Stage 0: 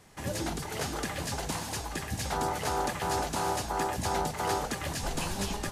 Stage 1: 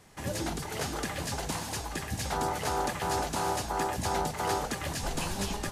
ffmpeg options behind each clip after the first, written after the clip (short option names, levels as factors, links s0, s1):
-af anull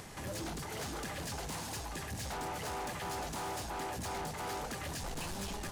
-af "acompressor=mode=upward:threshold=0.0141:ratio=2.5,asoftclip=type=tanh:threshold=0.0178,volume=0.841"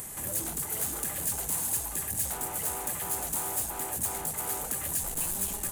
-af "aexciter=amount=8.6:drive=6.1:freq=7400"